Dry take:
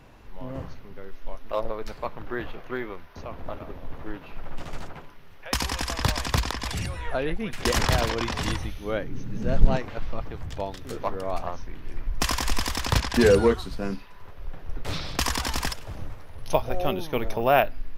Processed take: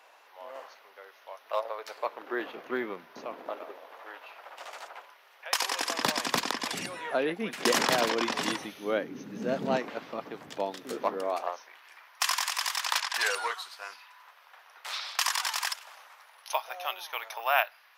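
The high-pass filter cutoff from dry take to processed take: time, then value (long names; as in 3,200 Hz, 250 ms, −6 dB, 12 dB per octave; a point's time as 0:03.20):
high-pass filter 24 dB per octave
0:01.73 590 Hz
0:02.92 170 Hz
0:04.01 590 Hz
0:05.52 590 Hz
0:06.04 220 Hz
0:11.15 220 Hz
0:11.83 870 Hz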